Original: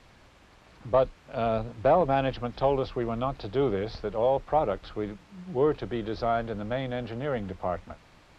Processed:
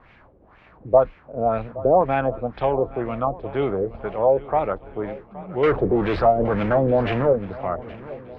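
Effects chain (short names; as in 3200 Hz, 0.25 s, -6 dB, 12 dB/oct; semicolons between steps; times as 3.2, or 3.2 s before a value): 5.63–7.33 power-law curve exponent 0.5; LFO low-pass sine 2 Hz 420–2500 Hz; swung echo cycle 1.367 s, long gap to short 1.5:1, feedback 35%, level -18 dB; gain +2 dB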